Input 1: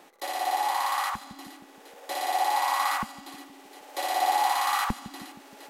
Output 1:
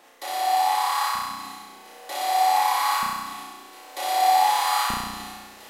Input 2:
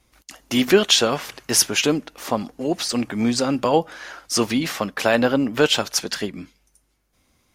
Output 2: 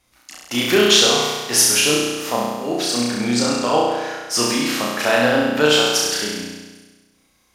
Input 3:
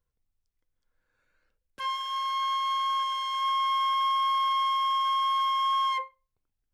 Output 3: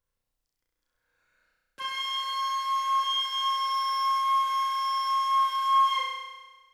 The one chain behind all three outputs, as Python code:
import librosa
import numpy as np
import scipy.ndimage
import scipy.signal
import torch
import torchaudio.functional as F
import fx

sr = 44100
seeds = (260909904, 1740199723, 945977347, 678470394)

y = fx.low_shelf(x, sr, hz=460.0, db=-7.0)
y = fx.room_flutter(y, sr, wall_m=5.7, rt60_s=1.3)